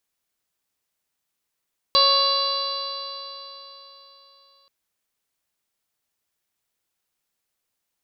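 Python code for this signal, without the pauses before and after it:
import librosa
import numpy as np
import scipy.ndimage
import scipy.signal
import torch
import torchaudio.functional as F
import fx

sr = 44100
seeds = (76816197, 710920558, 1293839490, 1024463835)

y = fx.additive_stiff(sr, length_s=2.73, hz=551.0, level_db=-23, upper_db=(4.5, -15.5, -17, -6, -5.5, 5.5, 5.5, -14.0), decay_s=3.71, stiffness=0.0017)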